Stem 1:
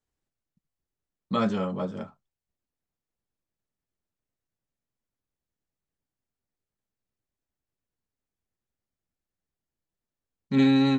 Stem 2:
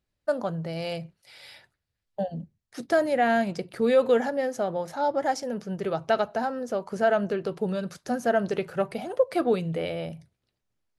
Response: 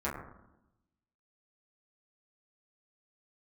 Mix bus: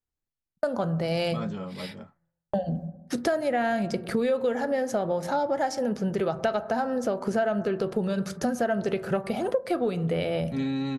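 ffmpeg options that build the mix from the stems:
-filter_complex "[0:a]volume=0.376[s0];[1:a]agate=range=0.0178:threshold=0.00447:ratio=16:detection=peak,acontrast=38,adelay=350,volume=1.26,asplit=2[s1][s2];[s2]volume=0.126[s3];[2:a]atrim=start_sample=2205[s4];[s3][s4]afir=irnorm=-1:irlink=0[s5];[s0][s1][s5]amix=inputs=3:normalize=0,lowshelf=f=120:g=7,acompressor=threshold=0.0631:ratio=5"

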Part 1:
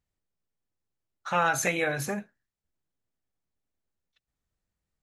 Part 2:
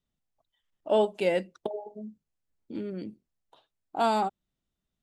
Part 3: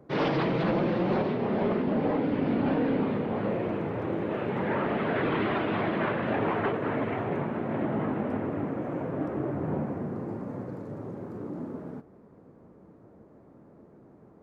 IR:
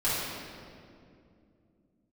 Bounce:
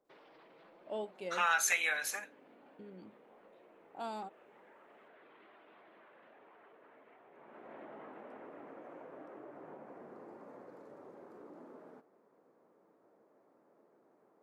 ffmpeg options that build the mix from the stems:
-filter_complex "[0:a]highpass=1300,adelay=50,volume=0.891[s0];[1:a]volume=0.15,asplit=3[s1][s2][s3];[s1]atrim=end=1.58,asetpts=PTS-STARTPTS,afade=t=out:st=1.576:d=0.004:c=hsin[s4];[s2]atrim=start=1.58:end=2.79,asetpts=PTS-STARTPTS,volume=0[s5];[s3]atrim=start=2.79,asetpts=PTS-STARTPTS,afade=t=in:d=0.004:c=hsin[s6];[s4][s5][s6]concat=n=3:v=0:a=1[s7];[2:a]highpass=470,alimiter=level_in=1.19:limit=0.0631:level=0:latency=1:release=20,volume=0.841,acompressor=threshold=0.0112:ratio=6,volume=0.376,afade=t=in:st=7.32:d=0.45:silence=0.281838[s8];[s0][s7][s8]amix=inputs=3:normalize=0"

